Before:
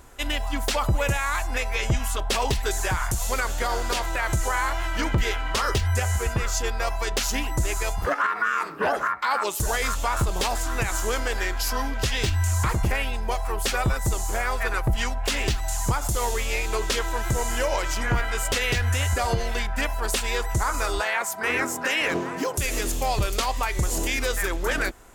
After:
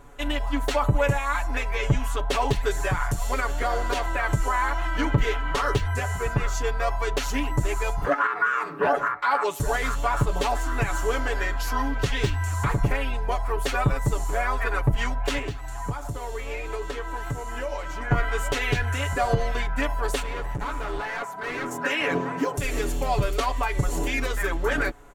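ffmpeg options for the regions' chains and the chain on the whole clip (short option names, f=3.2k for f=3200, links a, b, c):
-filter_complex "[0:a]asettb=1/sr,asplit=3[a][b][c];[a]atrim=end=15.384[d];[b]atrim=start=15.38:end=18.11,asetpts=PTS-STARTPTS,afade=t=in:d=0.004:c=qsin,afade=t=out:st=2.726:d=0.004:c=qsin,acrossover=split=82|2300[e][f][g];[e]acompressor=threshold=-31dB:ratio=4[h];[f]acompressor=threshold=-33dB:ratio=4[i];[g]acompressor=threshold=-41dB:ratio=4[j];[h][i][j]amix=inputs=3:normalize=0,highpass=44,asplit=2[k][l];[l]adelay=19,volume=-13dB[m];[k][m]amix=inputs=2:normalize=0,atrim=end_sample=120393[n];[c]atrim=start=18.106[o];[d][n]acrossfade=d=0.004:c1=hsin:c2=qsin[p];[p][o]acrossfade=d=0.004:c1=qsin:c2=hsin,asettb=1/sr,asplit=3[q][r][s];[q]atrim=end=20.224[t];[r]atrim=start=20.22:end=21.71,asetpts=PTS-STARTPTS,afade=t=in:d=0.004:c=qsin,afade=t=out:st=1.486:d=0.004:c=qsin,acrossover=split=2700[u][v];[v]acompressor=threshold=-40dB:ratio=4:attack=1:release=60[w];[u][w]amix=inputs=2:normalize=0,asoftclip=type=hard:threshold=-28dB[x];[s]atrim=start=21.706[y];[t][x]acrossfade=d=0.004:c1=hsin:c2=qsin[z];[z][y]acrossfade=d=0.004:c1=qsin:c2=hsin,highshelf=f=3.1k:g=-11.5,bandreject=f=5k:w=14,aecho=1:1:7:0.78"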